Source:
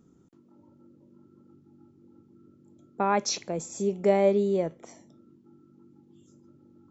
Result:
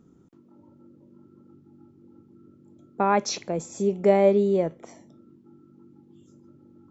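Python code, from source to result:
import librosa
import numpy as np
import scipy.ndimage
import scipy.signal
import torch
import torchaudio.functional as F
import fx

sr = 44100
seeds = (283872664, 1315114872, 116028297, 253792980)

y = fx.high_shelf(x, sr, hz=4500.0, db=-7.0)
y = F.gain(torch.from_numpy(y), 3.5).numpy()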